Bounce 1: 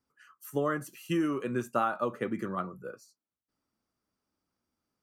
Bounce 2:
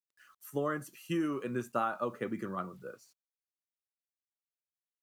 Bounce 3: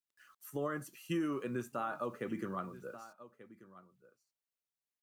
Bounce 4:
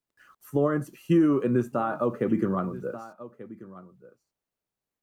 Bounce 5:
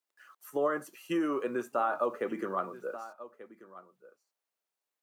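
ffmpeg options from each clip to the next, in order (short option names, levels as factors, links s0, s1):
-af "acrusher=bits=10:mix=0:aa=0.000001,volume=0.668"
-af "aecho=1:1:1185:0.119,alimiter=level_in=1.19:limit=0.0631:level=0:latency=1:release=73,volume=0.841,volume=0.841"
-af "tiltshelf=f=1200:g=7.5,volume=2.51"
-af "highpass=550"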